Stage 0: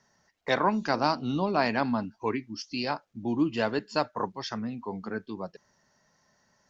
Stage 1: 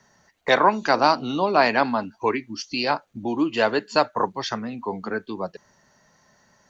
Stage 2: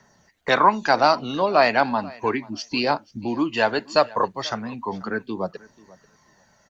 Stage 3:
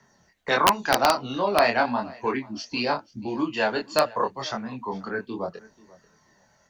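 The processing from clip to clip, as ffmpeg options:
ffmpeg -i in.wav -filter_complex "[0:a]bandreject=frequency=5200:width=7.9,acrossover=split=320|3300[link_01][link_02][link_03];[link_01]acompressor=threshold=-43dB:ratio=6[link_04];[link_04][link_02][link_03]amix=inputs=3:normalize=0,volume=8.5dB" out.wav
ffmpeg -i in.wav -af "aphaser=in_gain=1:out_gain=1:delay=1.9:decay=0.34:speed=0.36:type=triangular,aecho=1:1:487|974:0.075|0.0127" out.wav
ffmpeg -i in.wav -filter_complex "[0:a]flanger=delay=22.5:depth=3.1:speed=0.87,acrossover=split=350[link_01][link_02];[link_02]aeval=exprs='(mod(2.66*val(0)+1,2)-1)/2.66':channel_layout=same[link_03];[link_01][link_03]amix=inputs=2:normalize=0" out.wav

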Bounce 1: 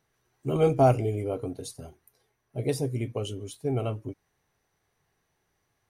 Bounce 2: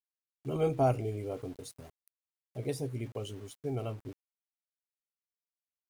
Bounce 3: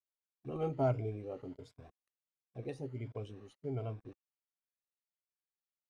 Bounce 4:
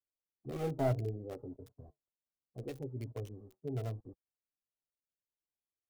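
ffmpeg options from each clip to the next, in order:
ffmpeg -i in.wav -af "aeval=exprs='val(0)*gte(abs(val(0)),0.00596)':channel_layout=same,volume=-7dB" out.wav
ffmpeg -i in.wav -af "afftfilt=real='re*pow(10,10/40*sin(2*PI*(1.7*log(max(b,1)*sr/1024/100)/log(2)-(1.4)*(pts-256)/sr)))':imag='im*pow(10,10/40*sin(2*PI*(1.7*log(max(b,1)*sr/1024/100)/log(2)-(1.4)*(pts-256)/sr)))':win_size=1024:overlap=0.75,adynamicsmooth=sensitivity=2.5:basefreq=3500,volume=-6dB" out.wav
ffmpeg -i in.wav -filter_complex "[0:a]acrossover=split=100|860[link_01][link_02][link_03];[link_02]flanger=delay=2.2:depth=9.8:regen=-62:speed=0.7:shape=sinusoidal[link_04];[link_03]acrusher=bits=6:dc=4:mix=0:aa=0.000001[link_05];[link_01][link_04][link_05]amix=inputs=3:normalize=0,volume=4dB" out.wav

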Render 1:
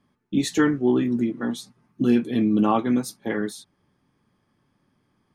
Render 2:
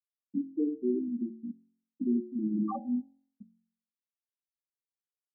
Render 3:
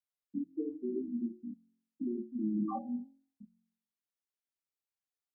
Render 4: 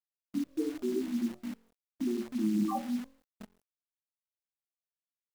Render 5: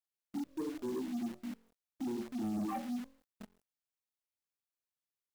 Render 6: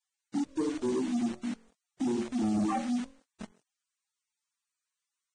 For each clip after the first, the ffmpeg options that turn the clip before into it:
ffmpeg -i in.wav -af "afftfilt=real='re*gte(hypot(re,im),0.562)':imag='im*gte(hypot(re,im),0.562)':win_size=1024:overlap=0.75,bandreject=frequency=45.04:width_type=h:width=4,bandreject=frequency=90.08:width_type=h:width=4,bandreject=frequency=135.12:width_type=h:width=4,bandreject=frequency=180.16:width_type=h:width=4,bandreject=frequency=225.2:width_type=h:width=4,bandreject=frequency=270.24:width_type=h:width=4,bandreject=frequency=315.28:width_type=h:width=4,bandreject=frequency=360.32:width_type=h:width=4,bandreject=frequency=405.36:width_type=h:width=4,bandreject=frequency=450.4:width_type=h:width=4,bandreject=frequency=495.44:width_type=h:width=4,bandreject=frequency=540.48:width_type=h:width=4,bandreject=frequency=585.52:width_type=h:width=4,bandreject=frequency=630.56:width_type=h:width=4,bandreject=frequency=675.6:width_type=h:width=4,bandreject=frequency=720.64:width_type=h:width=4,bandreject=frequency=765.68:width_type=h:width=4,bandreject=frequency=810.72:width_type=h:width=4,bandreject=frequency=855.76:width_type=h:width=4,bandreject=frequency=900.8:width_type=h:width=4,volume=-8.5dB" out.wav
ffmpeg -i in.wav -af "flanger=delay=22.5:depth=3.4:speed=0.51" out.wav
ffmpeg -i in.wav -af "acrusher=bits=9:dc=4:mix=0:aa=0.000001,volume=4dB" out.wav
ffmpeg -i in.wav -af "asoftclip=type=tanh:threshold=-30.5dB,volume=-2dB" out.wav
ffmpeg -i in.wav -af "volume=7.5dB" -ar 22050 -c:a libvorbis -b:a 16k out.ogg

